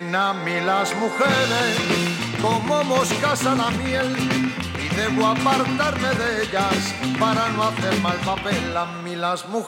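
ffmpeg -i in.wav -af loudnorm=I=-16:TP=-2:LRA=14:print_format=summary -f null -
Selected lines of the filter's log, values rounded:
Input Integrated:    -21.3 LUFS
Input True Peak:      -5.7 dBTP
Input LRA:             2.4 LU
Input Threshold:     -31.3 LUFS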